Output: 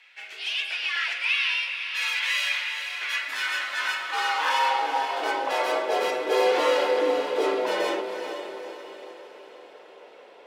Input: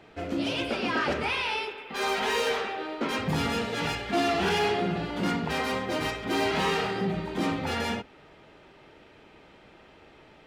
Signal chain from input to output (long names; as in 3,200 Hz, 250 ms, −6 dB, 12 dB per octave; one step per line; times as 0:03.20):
feedback delay with all-pass diffusion 451 ms, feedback 50%, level −8 dB
frequency shifter +110 Hz
high-pass filter sweep 2,200 Hz → 470 Hz, 0:02.91–0:06.15